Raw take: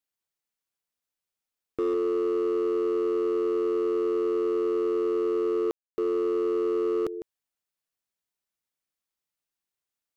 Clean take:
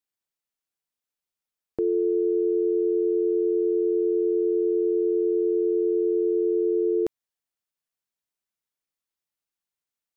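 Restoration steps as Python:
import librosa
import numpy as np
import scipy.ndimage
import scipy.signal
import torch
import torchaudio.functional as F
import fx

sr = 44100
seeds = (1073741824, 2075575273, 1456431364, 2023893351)

y = fx.fix_declip(x, sr, threshold_db=-22.5)
y = fx.fix_ambience(y, sr, seeds[0], print_start_s=9.43, print_end_s=9.93, start_s=5.71, end_s=5.98)
y = fx.fix_echo_inverse(y, sr, delay_ms=153, level_db=-12.5)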